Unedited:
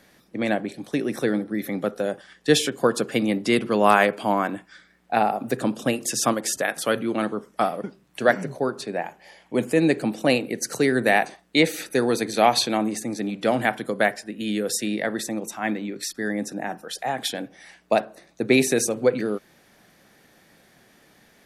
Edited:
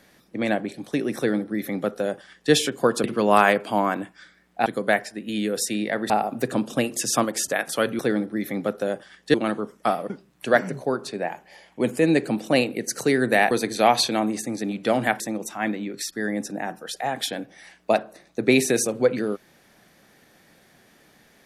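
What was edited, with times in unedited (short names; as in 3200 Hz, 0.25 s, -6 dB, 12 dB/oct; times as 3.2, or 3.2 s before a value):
1.17–2.52 copy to 7.08
3.04–3.57 cut
11.25–12.09 cut
13.78–15.22 move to 5.19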